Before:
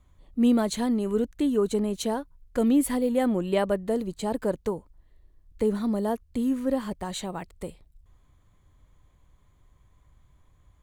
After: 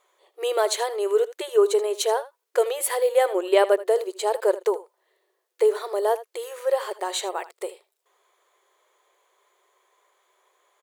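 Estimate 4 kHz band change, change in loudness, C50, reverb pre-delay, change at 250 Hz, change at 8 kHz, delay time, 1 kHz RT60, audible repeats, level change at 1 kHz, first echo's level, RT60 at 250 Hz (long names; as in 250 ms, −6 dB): +7.0 dB, +3.0 dB, no reverb audible, no reverb audible, −13.5 dB, +7.0 dB, 79 ms, no reverb audible, 1, +7.0 dB, −16.5 dB, no reverb audible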